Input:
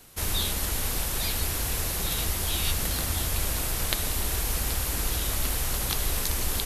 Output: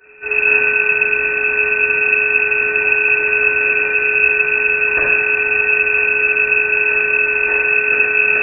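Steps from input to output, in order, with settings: sample sorter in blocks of 32 samples; HPF 53 Hz 12 dB/oct; bell 450 Hz -15 dB 1.5 oct; small resonant body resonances 230/920 Hz, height 7 dB; varispeed -21%; shoebox room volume 440 m³, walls mixed, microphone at 7.6 m; inverted band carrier 2600 Hz; gain -1 dB

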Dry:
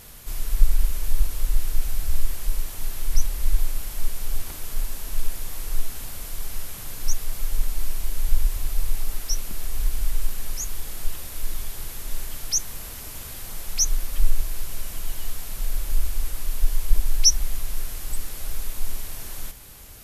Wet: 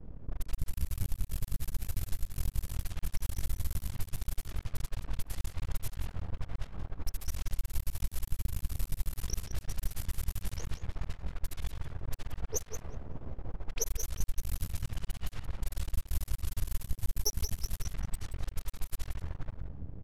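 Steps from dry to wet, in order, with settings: on a send: frequency-shifting echo 0.193 s, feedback 44%, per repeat +33 Hz, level -11 dB; on the sum: added harmonics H 6 -12 dB, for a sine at -1.5 dBFS; half-wave rectifier; low-pass opened by the level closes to 320 Hz, open at -17 dBFS; in parallel at -12 dB: overloaded stage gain 13 dB; on the sum: compressor 3:1, threshold -40 dBFS, peak gain reduction 24 dB; echo 0.177 s -11 dB; gain +5.5 dB

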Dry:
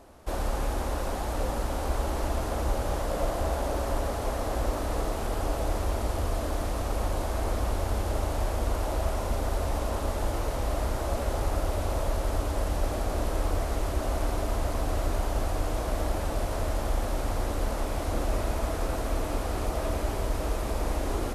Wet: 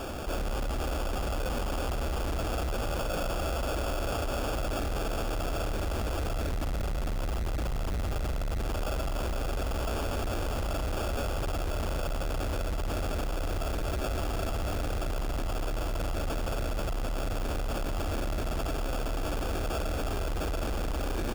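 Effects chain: 6.33–8.63 low shelf 180 Hz +6 dB; echo 0.662 s -8.5 dB; soft clip -28.5 dBFS, distortion -9 dB; bell 990 Hz -7.5 dB 0.24 oct; sample-rate reducer 2000 Hz, jitter 0%; fast leveller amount 70%

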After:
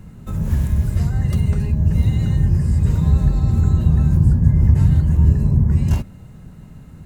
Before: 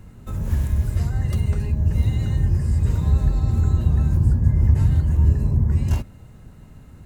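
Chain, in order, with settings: bell 170 Hz +7.5 dB 0.64 oct; gain +2 dB

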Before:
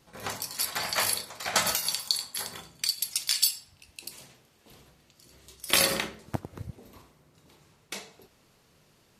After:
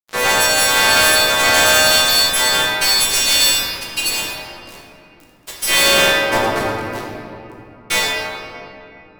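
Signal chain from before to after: frequency quantiser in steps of 2 st; HPF 130 Hz 6 dB/oct; tone controls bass -12 dB, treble -13 dB; in parallel at -0.5 dB: compressor, threshold -39 dBFS, peak gain reduction 19 dB; on the sum: fuzz box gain 40 dB, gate -43 dBFS; reverb RT60 3.0 s, pre-delay 6 ms, DRR -4.5 dB; gain -2 dB

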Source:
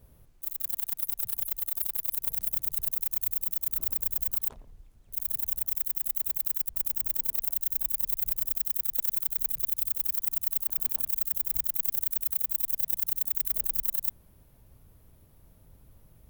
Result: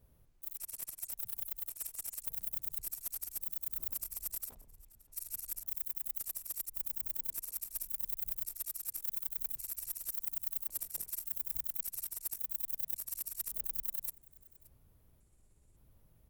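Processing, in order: trilling pitch shifter -7 st, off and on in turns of 0.563 s; echo 0.574 s -22 dB; gain -9 dB

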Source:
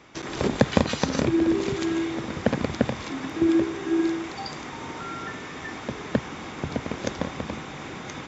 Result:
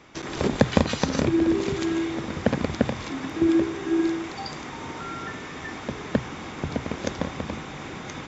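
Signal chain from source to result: low shelf 85 Hz +5.5 dB; notches 60/120 Hz

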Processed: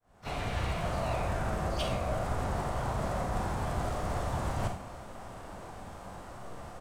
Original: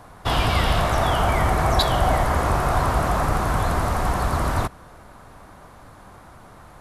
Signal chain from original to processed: opening faded in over 0.96 s; dynamic EQ 120 Hz, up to +4 dB, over -38 dBFS, Q 1.2; reverse; compressor 12:1, threshold -29 dBFS, peak gain reduction 16.5 dB; reverse; harmoniser -3 st -7 dB, +7 st -8 dB, +12 st -16 dB; Schroeder reverb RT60 0.36 s, combs from 32 ms, DRR 3.5 dB; formant shift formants -4 st; gain -2 dB

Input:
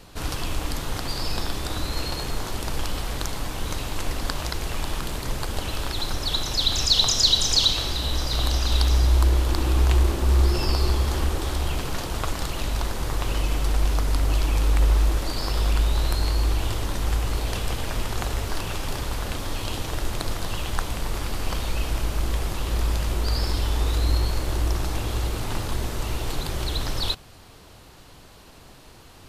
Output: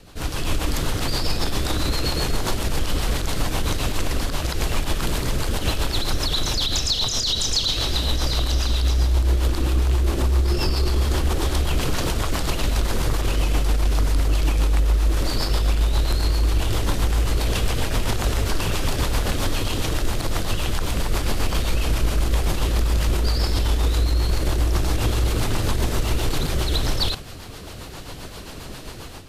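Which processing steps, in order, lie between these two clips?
AGC; limiter -13.5 dBFS, peak gain reduction 12 dB; rotary speaker horn 7.5 Hz; gain +2.5 dB

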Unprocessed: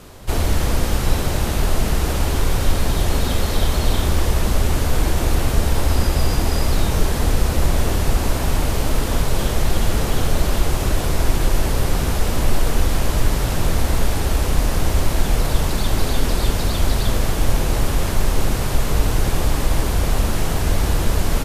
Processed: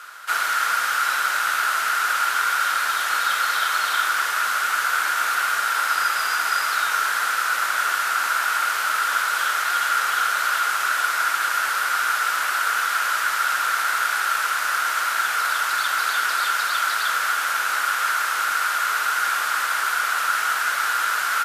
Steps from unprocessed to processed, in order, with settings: resonant high-pass 1400 Hz, resonance Q 9.5

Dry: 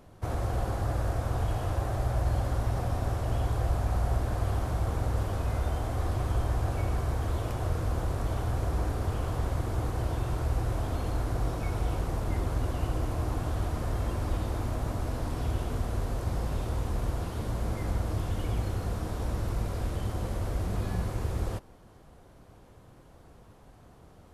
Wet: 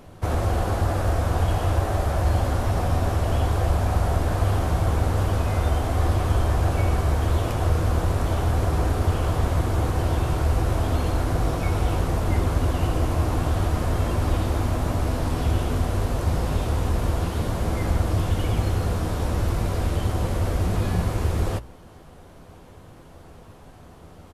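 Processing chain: bell 2800 Hz +2 dB; notches 60/120 Hz; doubler 12 ms -11 dB; gain +8 dB

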